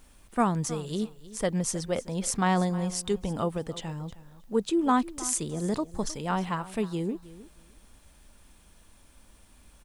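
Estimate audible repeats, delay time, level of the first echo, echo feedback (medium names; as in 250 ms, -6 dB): 2, 313 ms, -17.5 dB, 16%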